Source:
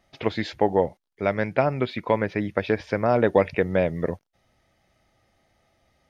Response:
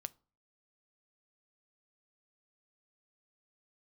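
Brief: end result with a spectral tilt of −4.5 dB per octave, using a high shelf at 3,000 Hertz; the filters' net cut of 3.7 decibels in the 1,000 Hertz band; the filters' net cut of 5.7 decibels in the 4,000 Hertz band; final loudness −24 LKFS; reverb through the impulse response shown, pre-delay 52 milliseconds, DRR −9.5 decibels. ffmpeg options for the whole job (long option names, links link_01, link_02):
-filter_complex "[0:a]equalizer=frequency=1000:width_type=o:gain=-4.5,highshelf=frequency=3000:gain=-5,equalizer=frequency=4000:width_type=o:gain=-3,asplit=2[link_01][link_02];[1:a]atrim=start_sample=2205,adelay=52[link_03];[link_02][link_03]afir=irnorm=-1:irlink=0,volume=13dB[link_04];[link_01][link_04]amix=inputs=2:normalize=0,volume=-8.5dB"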